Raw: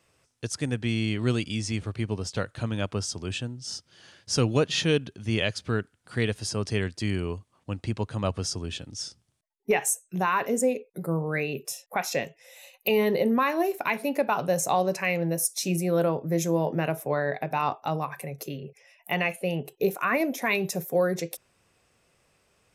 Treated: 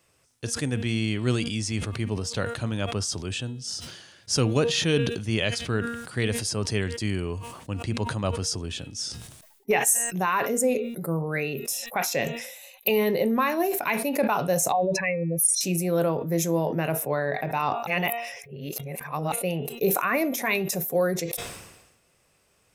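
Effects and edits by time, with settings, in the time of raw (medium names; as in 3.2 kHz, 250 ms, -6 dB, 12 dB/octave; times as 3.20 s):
14.72–15.61 s: spectral contrast enhancement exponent 2.3
17.87–19.32 s: reverse
whole clip: treble shelf 9.1 kHz +9 dB; de-hum 234.4 Hz, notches 17; decay stretcher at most 55 dB/s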